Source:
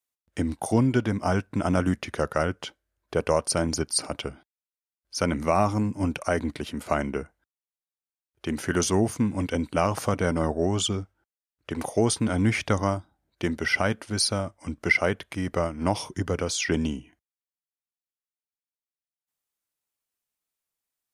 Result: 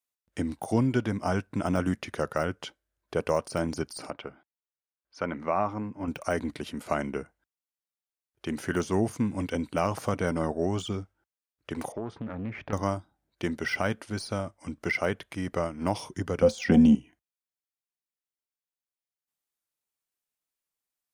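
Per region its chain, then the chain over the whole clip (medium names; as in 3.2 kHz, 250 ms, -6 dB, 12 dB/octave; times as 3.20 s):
4.10–6.08 s: low-pass 1.6 kHz + tilt EQ +2.5 dB/octave
11.92–12.73 s: low-pass 1.6 kHz + compression 2:1, threshold -34 dBFS + loudspeaker Doppler distortion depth 0.43 ms
16.42–16.95 s: bass shelf 110 Hz +9.5 dB + small resonant body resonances 220/520/730 Hz, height 17 dB, ringing for 85 ms
whole clip: de-esser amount 75%; peaking EQ 74 Hz -7 dB 0.39 oct; trim -3 dB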